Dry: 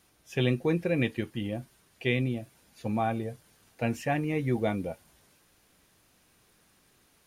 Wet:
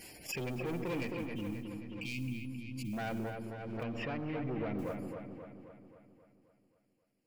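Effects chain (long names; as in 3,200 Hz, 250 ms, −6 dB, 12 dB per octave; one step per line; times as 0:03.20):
lower of the sound and its delayed copy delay 0.4 ms
noise gate −57 dBFS, range −23 dB
gate on every frequency bin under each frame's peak −20 dB strong
low-shelf EQ 200 Hz −10 dB
in parallel at +2 dB: brickwall limiter −25 dBFS, peak gain reduction 9 dB
on the sum: soft clipping −28 dBFS, distortion −8 dB
noise that follows the level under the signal 25 dB
0:01.12–0:02.93: linear-phase brick-wall band-stop 340–2,100 Hz
0:03.83–0:04.79: high-frequency loss of the air 320 metres
delay with a low-pass on its return 266 ms, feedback 56%, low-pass 3,000 Hz, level −5.5 dB
on a send at −14 dB: convolution reverb RT60 0.85 s, pre-delay 77 ms
on the sum: background raised ahead of every attack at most 27 dB per second
level −6.5 dB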